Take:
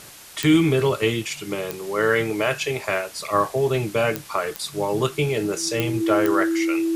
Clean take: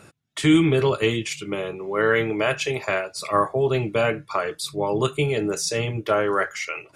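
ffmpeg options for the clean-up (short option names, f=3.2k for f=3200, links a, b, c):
-af "adeclick=t=4,bandreject=f=330:w=30,afwtdn=0.0079"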